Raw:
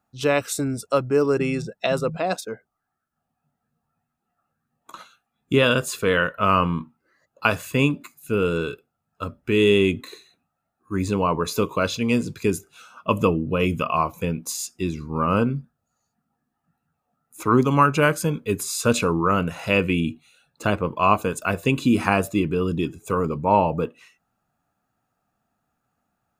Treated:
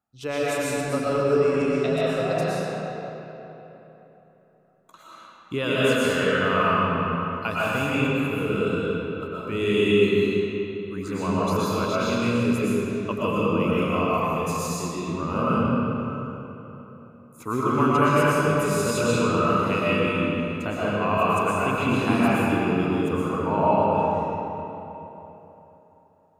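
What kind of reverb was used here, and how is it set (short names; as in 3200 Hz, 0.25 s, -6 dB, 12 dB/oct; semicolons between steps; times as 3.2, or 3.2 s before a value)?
digital reverb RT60 3.5 s, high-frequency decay 0.65×, pre-delay 80 ms, DRR -9 dB; gain -10 dB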